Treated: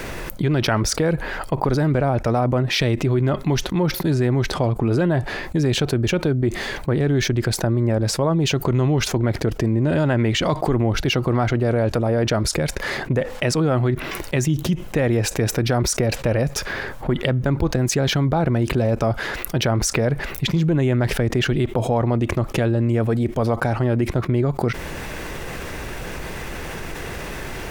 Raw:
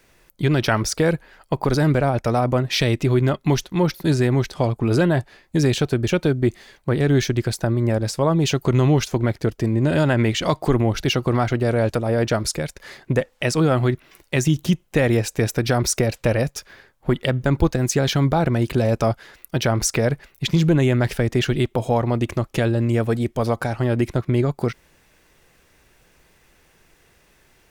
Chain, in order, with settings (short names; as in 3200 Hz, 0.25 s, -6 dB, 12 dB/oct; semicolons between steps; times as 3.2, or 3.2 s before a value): high shelf 2700 Hz -8.5 dB; fast leveller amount 70%; gain -4 dB